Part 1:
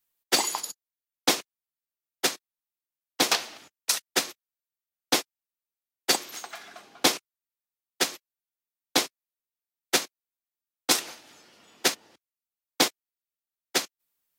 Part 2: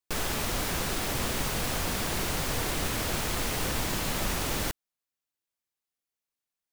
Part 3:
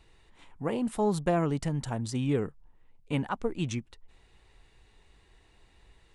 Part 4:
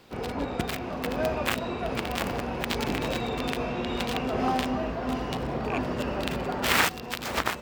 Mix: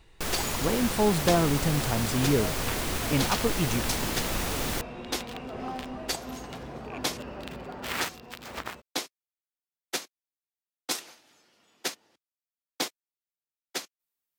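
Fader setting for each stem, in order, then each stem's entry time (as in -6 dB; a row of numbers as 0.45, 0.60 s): -8.5, -0.5, +3.0, -9.5 dB; 0.00, 0.10, 0.00, 1.20 s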